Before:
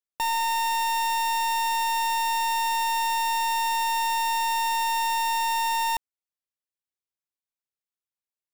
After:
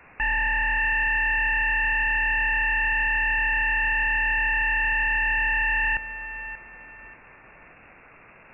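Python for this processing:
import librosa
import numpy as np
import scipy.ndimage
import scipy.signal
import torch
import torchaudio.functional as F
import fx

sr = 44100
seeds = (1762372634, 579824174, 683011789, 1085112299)

p1 = scipy.signal.sosfilt(scipy.signal.butter(4, 1400.0, 'highpass', fs=sr, output='sos'), x)
p2 = fx.quant_dither(p1, sr, seeds[0], bits=8, dither='triangular')
p3 = p1 + (p2 * librosa.db_to_amplitude(-8.5))
p4 = fx.fold_sine(p3, sr, drive_db=12, ceiling_db=-18.0)
p5 = p4 + fx.echo_feedback(p4, sr, ms=584, feedback_pct=29, wet_db=-12, dry=0)
p6 = fx.freq_invert(p5, sr, carrier_hz=2700)
p7 = fx.doppler_dist(p6, sr, depth_ms=0.12)
y = p7 * librosa.db_to_amplitude(-1.5)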